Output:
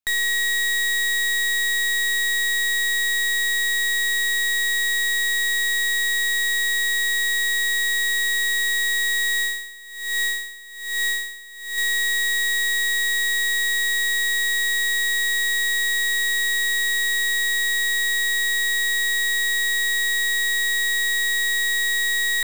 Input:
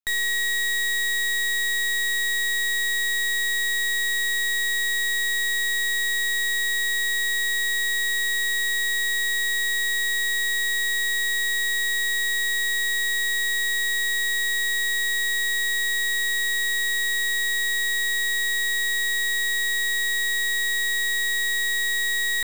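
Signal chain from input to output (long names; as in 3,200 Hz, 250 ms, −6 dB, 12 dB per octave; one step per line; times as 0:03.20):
low-shelf EQ 410 Hz −2.5 dB
0:09.39–0:11.78: tremolo with a sine in dB 1.2 Hz, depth 20 dB
level +2.5 dB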